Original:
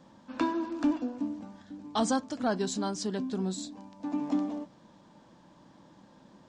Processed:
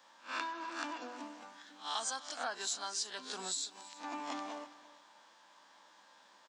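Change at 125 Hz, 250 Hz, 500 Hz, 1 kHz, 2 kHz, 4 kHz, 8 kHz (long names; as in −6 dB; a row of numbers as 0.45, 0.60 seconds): below −25 dB, −20.0 dB, −13.0 dB, −4.5 dB, +0.5 dB, +2.0 dB, +2.0 dB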